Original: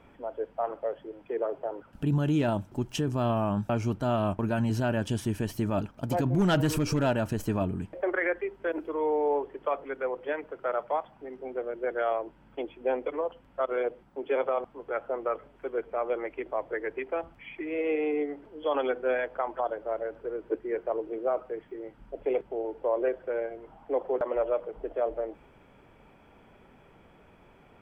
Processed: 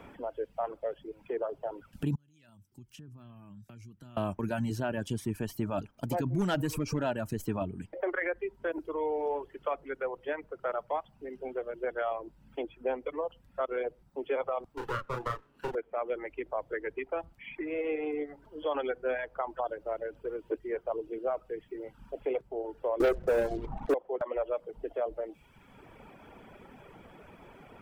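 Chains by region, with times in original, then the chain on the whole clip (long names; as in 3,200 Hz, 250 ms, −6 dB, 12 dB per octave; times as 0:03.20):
0:02.15–0:04.17: high-pass filter 60 Hz + guitar amp tone stack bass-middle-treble 6-0-2 + downward compressor 4 to 1, threshold −50 dBFS
0:14.77–0:15.75: lower of the sound and its delayed copy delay 0.69 ms + double-tracking delay 33 ms −3 dB + multiband upward and downward compressor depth 70%
0:23.00–0:23.94: spectral tilt −4 dB per octave + mains-hum notches 60/120/180/240/300/360 Hz + leveller curve on the samples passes 3
whole clip: reverb reduction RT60 0.84 s; high-shelf EQ 7,500 Hz +6 dB; multiband upward and downward compressor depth 40%; level −3 dB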